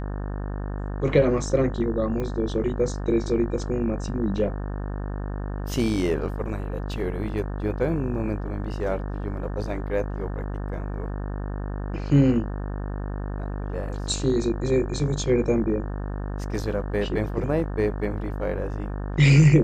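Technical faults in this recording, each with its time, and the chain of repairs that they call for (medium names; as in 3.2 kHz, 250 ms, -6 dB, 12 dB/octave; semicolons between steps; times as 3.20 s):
buzz 50 Hz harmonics 36 -30 dBFS
2.20 s: pop -19 dBFS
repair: de-click; de-hum 50 Hz, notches 36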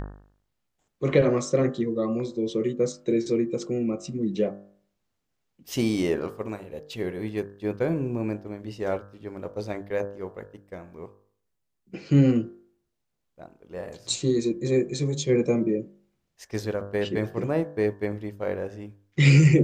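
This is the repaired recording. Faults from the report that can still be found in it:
nothing left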